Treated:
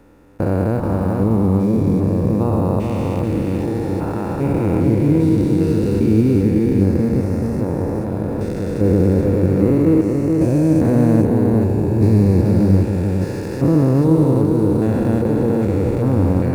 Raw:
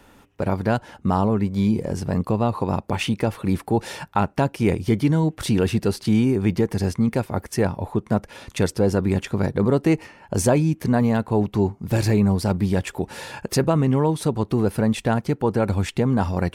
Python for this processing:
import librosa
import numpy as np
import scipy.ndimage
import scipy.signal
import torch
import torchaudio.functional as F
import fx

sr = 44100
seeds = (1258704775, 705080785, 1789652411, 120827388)

p1 = fx.spec_steps(x, sr, hold_ms=400)
p2 = fx.low_shelf(p1, sr, hz=230.0, db=6.5)
p3 = p2 + fx.echo_single(p2, sr, ms=432, db=-3.5, dry=0)
p4 = fx.rev_schroeder(p3, sr, rt60_s=3.0, comb_ms=28, drr_db=14.5)
p5 = fx.sample_hold(p4, sr, seeds[0], rate_hz=11000.0, jitter_pct=20)
p6 = p4 + F.gain(torch.from_numpy(p5), -7.0).numpy()
p7 = fx.graphic_eq_31(p6, sr, hz=(315, 500, 3150), db=(9, 7, -9))
y = F.gain(torch.from_numpy(p7), -2.0).numpy()